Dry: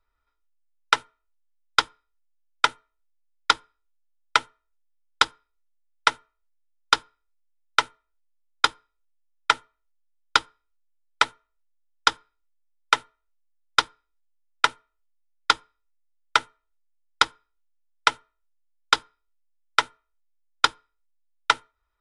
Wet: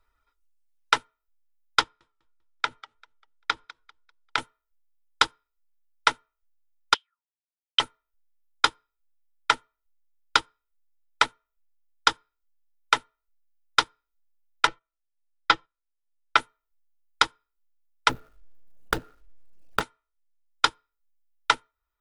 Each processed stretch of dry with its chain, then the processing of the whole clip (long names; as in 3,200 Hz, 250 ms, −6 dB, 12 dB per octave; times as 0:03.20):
0:01.81–0:04.38: downward compressor 4 to 1, threshold −26 dBFS + high-frequency loss of the air 73 metres + feedback echo with a swinging delay time 197 ms, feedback 31%, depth 83 cents, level −16 dB
0:06.94–0:07.80: high-shelf EQ 2,400 Hz +9 dB + envelope filter 480–3,100 Hz, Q 9.5, up, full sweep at −31 dBFS
0:14.67–0:16.37: noise gate −57 dBFS, range −10 dB + high-frequency loss of the air 140 metres + comb filter 6 ms, depth 95%
0:18.09–0:19.81: running median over 41 samples + envelope flattener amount 50%
whole clip: reverb reduction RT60 0.89 s; brickwall limiter −10.5 dBFS; level +5.5 dB